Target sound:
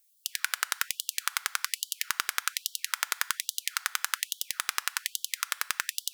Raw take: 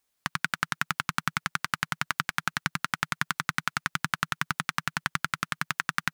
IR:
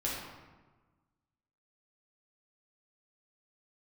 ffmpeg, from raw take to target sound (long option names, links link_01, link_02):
-filter_complex "[0:a]crystalizer=i=4.5:c=0,asplit=2[link_01][link_02];[1:a]atrim=start_sample=2205[link_03];[link_02][link_03]afir=irnorm=-1:irlink=0,volume=-19dB[link_04];[link_01][link_04]amix=inputs=2:normalize=0,afftfilt=real='re*gte(b*sr/1024,400*pow(3000/400,0.5+0.5*sin(2*PI*1.2*pts/sr)))':imag='im*gte(b*sr/1024,400*pow(3000/400,0.5+0.5*sin(2*PI*1.2*pts/sr)))':win_size=1024:overlap=0.75,volume=-7dB"